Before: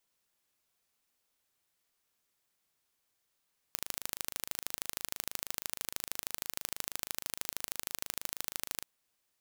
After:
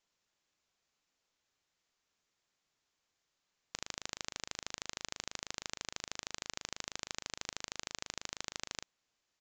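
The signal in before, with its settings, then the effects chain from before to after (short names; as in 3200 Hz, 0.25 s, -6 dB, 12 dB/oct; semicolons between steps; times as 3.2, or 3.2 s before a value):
pulse train 26.2/s, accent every 2, -6.5 dBFS 5.08 s
downsampling 16000 Hz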